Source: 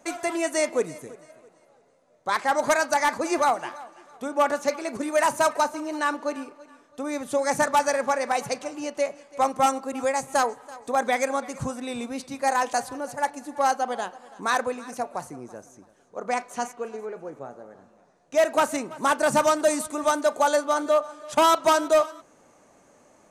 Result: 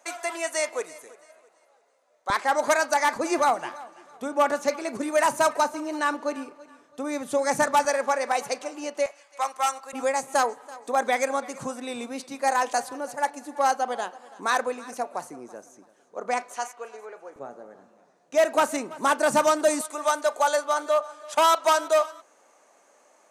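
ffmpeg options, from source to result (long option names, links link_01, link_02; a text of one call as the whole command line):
ffmpeg -i in.wav -af "asetnsamples=nb_out_samples=441:pad=0,asendcmd='2.3 highpass f 280;3.16 highpass f 110;7.85 highpass f 300;9.06 highpass f 970;9.93 highpass f 250;16.54 highpass f 640;17.36 highpass f 190;19.81 highpass f 530',highpass=650" out.wav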